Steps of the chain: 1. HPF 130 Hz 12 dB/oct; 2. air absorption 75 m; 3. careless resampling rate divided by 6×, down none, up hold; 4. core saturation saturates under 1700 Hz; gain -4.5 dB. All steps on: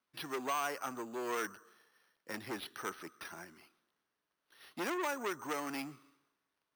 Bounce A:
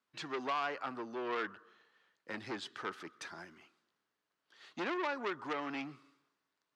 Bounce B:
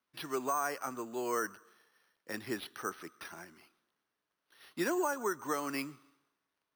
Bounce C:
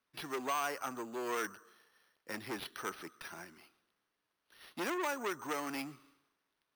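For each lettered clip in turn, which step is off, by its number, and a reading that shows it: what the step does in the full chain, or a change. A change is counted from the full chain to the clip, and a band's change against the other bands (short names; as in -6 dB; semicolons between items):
3, 8 kHz band -11.0 dB; 4, crest factor change -3.0 dB; 2, momentary loudness spread change +2 LU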